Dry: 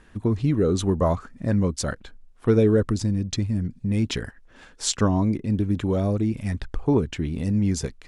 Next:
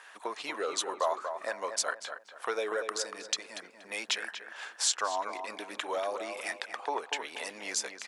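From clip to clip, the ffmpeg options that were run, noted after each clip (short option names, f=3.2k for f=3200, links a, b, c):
-filter_complex "[0:a]highpass=f=680:w=0.5412,highpass=f=680:w=1.3066,acompressor=threshold=-40dB:ratio=2,asplit=2[a][b];[b]adelay=238,lowpass=f=2.2k:p=1,volume=-7dB,asplit=2[c][d];[d]adelay=238,lowpass=f=2.2k:p=1,volume=0.35,asplit=2[e][f];[f]adelay=238,lowpass=f=2.2k:p=1,volume=0.35,asplit=2[g][h];[h]adelay=238,lowpass=f=2.2k:p=1,volume=0.35[i];[c][e][g][i]amix=inputs=4:normalize=0[j];[a][j]amix=inputs=2:normalize=0,volume=7dB"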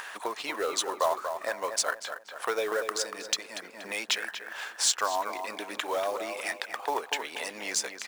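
-af "acompressor=mode=upward:threshold=-36dB:ratio=2.5,acrusher=bits=4:mode=log:mix=0:aa=0.000001,volume=3dB"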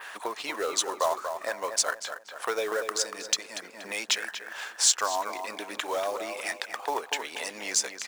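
-af "adynamicequalizer=threshold=0.00631:dfrequency=6600:dqfactor=1.2:tfrequency=6600:tqfactor=1.2:attack=5:release=100:ratio=0.375:range=2.5:mode=boostabove:tftype=bell"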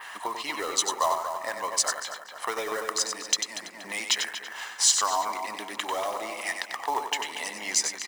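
-filter_complex "[0:a]aecho=1:1:1:0.45,asplit=2[a][b];[b]aecho=0:1:94:0.447[c];[a][c]amix=inputs=2:normalize=0"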